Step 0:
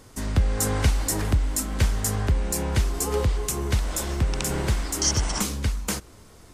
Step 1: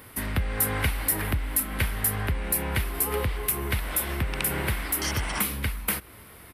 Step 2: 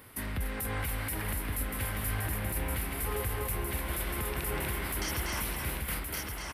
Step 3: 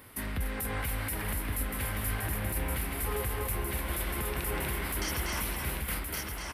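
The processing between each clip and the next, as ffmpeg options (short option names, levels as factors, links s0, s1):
-af "firequalizer=gain_entry='entry(450,0);entry(2100,10);entry(6700,-12);entry(11000,14)':delay=0.05:min_phase=1,acompressor=threshold=0.0316:ratio=1.5,highpass=45"
-filter_complex "[0:a]asplit=2[s0][s1];[s1]aecho=0:1:242|288.6:0.501|0.282[s2];[s0][s2]amix=inputs=2:normalize=0,alimiter=limit=0.106:level=0:latency=1:release=17,asplit=2[s3][s4];[s4]aecho=0:1:1120:0.596[s5];[s3][s5]amix=inputs=2:normalize=0,volume=0.531"
-af "flanger=delay=3:depth=2.5:regen=-77:speed=2:shape=triangular,volume=1.78"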